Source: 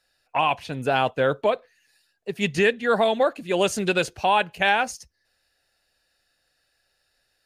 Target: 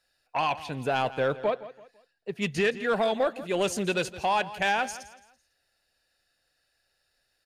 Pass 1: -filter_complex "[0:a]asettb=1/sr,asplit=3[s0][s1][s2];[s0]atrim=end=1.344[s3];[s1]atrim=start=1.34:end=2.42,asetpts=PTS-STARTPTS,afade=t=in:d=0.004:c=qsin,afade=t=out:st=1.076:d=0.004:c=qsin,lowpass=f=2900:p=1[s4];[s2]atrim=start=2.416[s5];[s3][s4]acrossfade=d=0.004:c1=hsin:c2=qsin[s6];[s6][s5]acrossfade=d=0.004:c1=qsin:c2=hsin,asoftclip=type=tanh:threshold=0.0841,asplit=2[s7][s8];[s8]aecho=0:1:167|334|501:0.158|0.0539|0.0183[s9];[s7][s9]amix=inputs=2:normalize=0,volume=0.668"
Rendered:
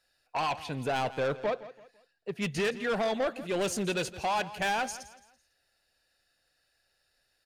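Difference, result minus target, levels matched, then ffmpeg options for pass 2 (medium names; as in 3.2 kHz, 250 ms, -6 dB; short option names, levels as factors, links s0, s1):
saturation: distortion +8 dB
-filter_complex "[0:a]asettb=1/sr,asplit=3[s0][s1][s2];[s0]atrim=end=1.344[s3];[s1]atrim=start=1.34:end=2.42,asetpts=PTS-STARTPTS,afade=t=in:d=0.004:c=qsin,afade=t=out:st=1.076:d=0.004:c=qsin,lowpass=f=2900:p=1[s4];[s2]atrim=start=2.416[s5];[s3][s4]acrossfade=d=0.004:c1=hsin:c2=qsin[s6];[s6][s5]acrossfade=d=0.004:c1=qsin:c2=hsin,asoftclip=type=tanh:threshold=0.211,asplit=2[s7][s8];[s8]aecho=0:1:167|334|501:0.158|0.0539|0.0183[s9];[s7][s9]amix=inputs=2:normalize=0,volume=0.668"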